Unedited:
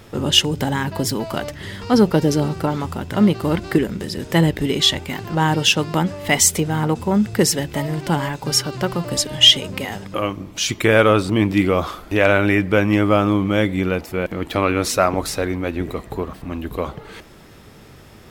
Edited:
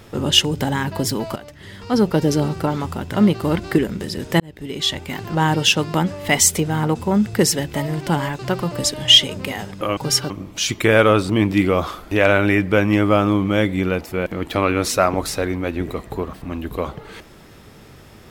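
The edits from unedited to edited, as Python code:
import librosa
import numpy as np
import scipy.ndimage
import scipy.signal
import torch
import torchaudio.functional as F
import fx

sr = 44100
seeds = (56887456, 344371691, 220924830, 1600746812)

y = fx.edit(x, sr, fx.fade_in_from(start_s=1.36, length_s=0.98, floor_db=-14.0),
    fx.fade_in_span(start_s=4.4, length_s=0.82),
    fx.move(start_s=8.39, length_s=0.33, to_s=10.3), tone=tone)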